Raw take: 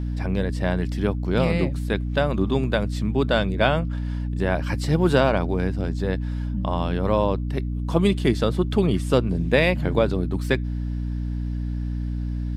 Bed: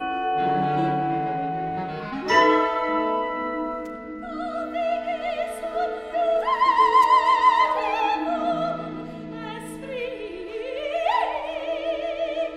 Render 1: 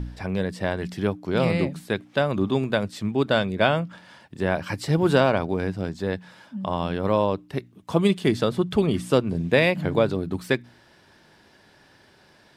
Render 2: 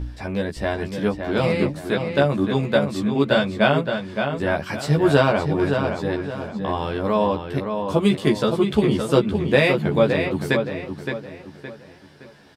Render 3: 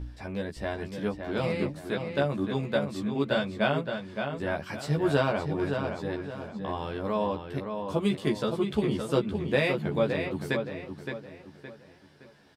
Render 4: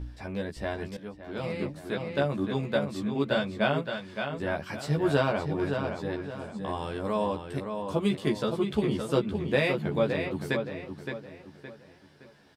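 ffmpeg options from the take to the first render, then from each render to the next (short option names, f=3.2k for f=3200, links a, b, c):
-af "bandreject=f=60:t=h:w=4,bandreject=f=120:t=h:w=4,bandreject=f=180:t=h:w=4,bandreject=f=240:t=h:w=4,bandreject=f=300:t=h:w=4"
-filter_complex "[0:a]asplit=2[a][b];[b]adelay=14,volume=-2dB[c];[a][c]amix=inputs=2:normalize=0,asplit=2[d][e];[e]adelay=567,lowpass=f=4.2k:p=1,volume=-6dB,asplit=2[f][g];[g]adelay=567,lowpass=f=4.2k:p=1,volume=0.37,asplit=2[h][i];[i]adelay=567,lowpass=f=4.2k:p=1,volume=0.37,asplit=2[j][k];[k]adelay=567,lowpass=f=4.2k:p=1,volume=0.37[l];[d][f][h][j][l]amix=inputs=5:normalize=0"
-af "volume=-8.5dB"
-filter_complex "[0:a]asettb=1/sr,asplit=3[a][b][c];[a]atrim=end=3.824[d];[b]atrim=start=3.82:end=4.3,asetpts=PTS-STARTPTS,afade=t=in:d=0.004:c=qsin,afade=t=out:st=0.476:d=0.004:c=qsin,tiltshelf=f=970:g=-3[e];[c]atrim=start=4.296[f];[d][e]acrossfade=d=0.004:c1=hsin:c2=qsin[g];[g][f]acrossfade=d=0.004:c1=qsin:c2=hsin,asettb=1/sr,asplit=3[h][i][j];[h]atrim=end=6.394[k];[i]atrim=start=6.39:end=7.9,asetpts=PTS-STARTPTS,afade=t=in:d=0.004:c=qsin,afade=t=out:st=1.506:d=0.004:c=qsin,equalizer=f=8.5k:t=o:w=0.49:g=13.5[l];[j]atrim=start=7.896[m];[k][l]acrossfade=d=0.004:c1=hsin:c2=qsin[n];[n][m]acrossfade=d=0.004:c1=qsin:c2=hsin,asplit=2[o][p];[o]atrim=end=0.97,asetpts=PTS-STARTPTS,afade=t=out:st=0.966:d=0.004:c=hsin:silence=0.211349[q];[p]atrim=start=0.97,asetpts=PTS-STARTPTS,afade=t=in:d=1.51:c=qsin:silence=0.211349[r];[q][r]concat=n=2:v=0:a=1"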